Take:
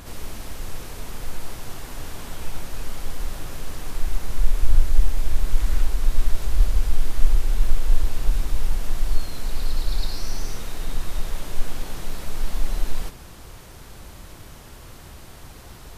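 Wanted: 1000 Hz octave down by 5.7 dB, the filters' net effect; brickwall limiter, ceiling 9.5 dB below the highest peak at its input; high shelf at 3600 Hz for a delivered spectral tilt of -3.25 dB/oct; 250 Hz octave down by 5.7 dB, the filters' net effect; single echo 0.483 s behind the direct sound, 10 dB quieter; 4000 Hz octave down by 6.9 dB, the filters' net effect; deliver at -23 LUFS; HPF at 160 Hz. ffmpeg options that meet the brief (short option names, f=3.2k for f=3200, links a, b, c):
-af "highpass=160,equalizer=f=250:t=o:g=-6,equalizer=f=1k:t=o:g=-6.5,highshelf=f=3.6k:g=-3.5,equalizer=f=4k:t=o:g=-6,alimiter=level_in=11.5dB:limit=-24dB:level=0:latency=1,volume=-11.5dB,aecho=1:1:483:0.316,volume=21.5dB"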